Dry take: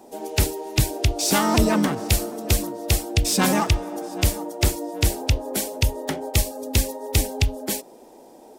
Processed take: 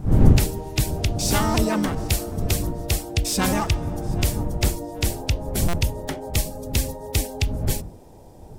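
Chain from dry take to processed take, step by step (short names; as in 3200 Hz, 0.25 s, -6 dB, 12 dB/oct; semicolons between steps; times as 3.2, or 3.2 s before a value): wind noise 120 Hz -22 dBFS; stuck buffer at 5.68, samples 256, times 8; gain -2.5 dB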